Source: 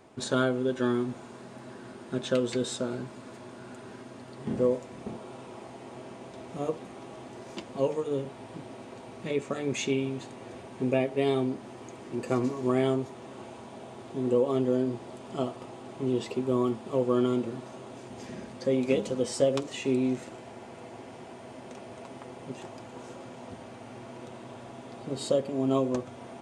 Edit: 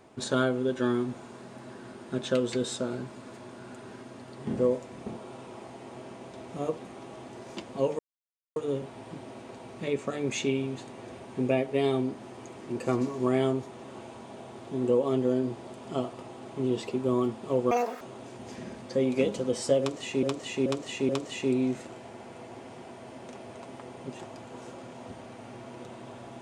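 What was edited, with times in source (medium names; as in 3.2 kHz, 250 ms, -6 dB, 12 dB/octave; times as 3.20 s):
7.99 s: insert silence 0.57 s
17.14–17.72 s: speed 194%
19.51–19.94 s: loop, 4 plays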